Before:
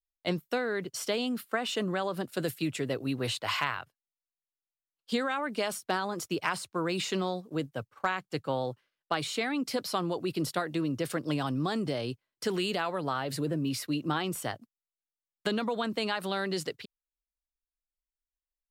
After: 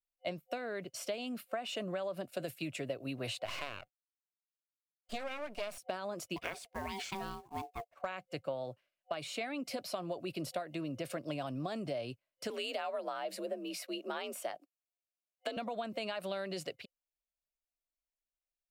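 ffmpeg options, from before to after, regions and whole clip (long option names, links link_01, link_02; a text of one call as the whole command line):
ffmpeg -i in.wav -filter_complex "[0:a]asettb=1/sr,asplit=3[link_01][link_02][link_03];[link_01]atrim=end=3.454[link_04];[link_02]atrim=start=3.45:end=5.78,asetpts=PTS-STARTPTS,afade=type=in:duration=0.004:curve=qsin,afade=type=out:start_time=2.326:duration=0.004:curve=qsin,agate=range=-33dB:threshold=-48dB:ratio=3:release=100:detection=peak,aeval=exprs='max(val(0),0)':channel_layout=same[link_05];[link_03]atrim=start=5.776[link_06];[link_04][link_05]acrossfade=duration=0.004:curve1=hsin:curve2=qsin[link_07];[link_07][link_06]acrossfade=duration=0.004:curve1=qsin:curve2=hsin,asettb=1/sr,asplit=3[link_08][link_09][link_10];[link_08]atrim=end=6.364[link_11];[link_09]atrim=start=6.36:end=7.95,asetpts=PTS-STARTPTS,afade=type=in:duration=0.004:curve=qsin,afade=type=out:start_time=1.586:duration=0.004:curve=qsin,aeval=exprs='val(0)*sin(2*PI*580*n/s)':channel_layout=same,acrusher=bits=4:mode=log:mix=0:aa=0.000001[link_12];[link_10]atrim=start=7.946[link_13];[link_11][link_12]acrossfade=duration=0.004:curve1=hsin:curve2=qsin[link_14];[link_14][link_13]acrossfade=duration=0.004:curve1=qsin:curve2=hsin,asettb=1/sr,asplit=3[link_15][link_16][link_17];[link_15]atrim=end=12.504[link_18];[link_16]atrim=start=12.5:end=15.57,asetpts=PTS-STARTPTS,afade=type=in:duration=0.004:curve=qsin,afade=type=out:start_time=3.066:duration=0.004:curve=qsin,highpass=270,afreqshift=53[link_19];[link_17]atrim=start=15.566[link_20];[link_18][link_19]acrossfade=duration=0.004:curve1=hsin:curve2=qsin[link_21];[link_21][link_20]acrossfade=duration=0.004:curve1=qsin:curve2=hsin,superequalizer=8b=3.16:12b=1.78,acompressor=threshold=-27dB:ratio=6,volume=-7dB" out.wav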